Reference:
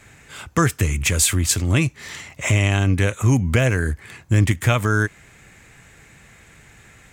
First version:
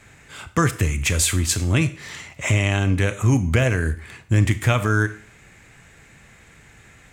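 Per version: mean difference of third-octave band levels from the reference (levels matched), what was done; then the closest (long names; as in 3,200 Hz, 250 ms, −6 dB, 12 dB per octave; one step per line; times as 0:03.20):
1.5 dB: high-shelf EQ 9,700 Hz −5 dB
four-comb reverb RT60 0.47 s, combs from 25 ms, DRR 12 dB
level −1 dB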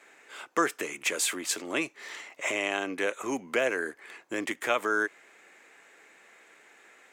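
6.5 dB: high-pass filter 340 Hz 24 dB per octave
high-shelf EQ 3,900 Hz −8.5 dB
level −4 dB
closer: first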